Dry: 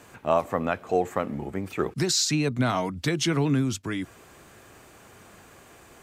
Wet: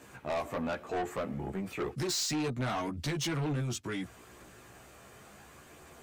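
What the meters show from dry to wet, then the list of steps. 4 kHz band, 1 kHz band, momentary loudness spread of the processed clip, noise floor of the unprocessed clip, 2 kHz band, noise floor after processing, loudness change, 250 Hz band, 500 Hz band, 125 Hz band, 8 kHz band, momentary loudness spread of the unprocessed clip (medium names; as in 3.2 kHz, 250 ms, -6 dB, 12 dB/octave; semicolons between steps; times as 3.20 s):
-7.5 dB, -8.0 dB, 22 LU, -52 dBFS, -7.0 dB, -55 dBFS, -8.0 dB, -8.5 dB, -9.0 dB, -7.0 dB, -7.5 dB, 10 LU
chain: chorus voices 2, 0.34 Hz, delay 15 ms, depth 1.8 ms; saturation -29 dBFS, distortion -8 dB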